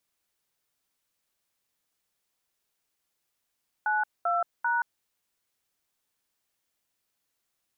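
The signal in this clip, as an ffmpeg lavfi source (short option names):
-f lavfi -i "aevalsrc='0.0501*clip(min(mod(t,0.392),0.176-mod(t,0.392))/0.002,0,1)*(eq(floor(t/0.392),0)*(sin(2*PI*852*mod(t,0.392))+sin(2*PI*1477*mod(t,0.392)))+eq(floor(t/0.392),1)*(sin(2*PI*697*mod(t,0.392))+sin(2*PI*1336*mod(t,0.392)))+eq(floor(t/0.392),2)*(sin(2*PI*941*mod(t,0.392))+sin(2*PI*1477*mod(t,0.392))))':d=1.176:s=44100"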